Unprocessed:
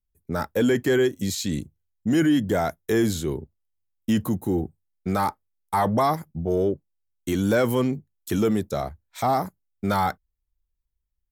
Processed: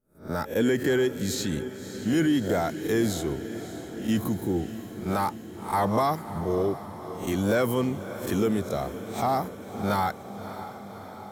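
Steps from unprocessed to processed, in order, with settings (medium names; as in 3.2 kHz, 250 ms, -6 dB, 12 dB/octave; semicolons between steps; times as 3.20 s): reverse spectral sustain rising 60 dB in 0.33 s; echo that smears into a reverb 589 ms, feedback 69%, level -12.5 dB; trim -3.5 dB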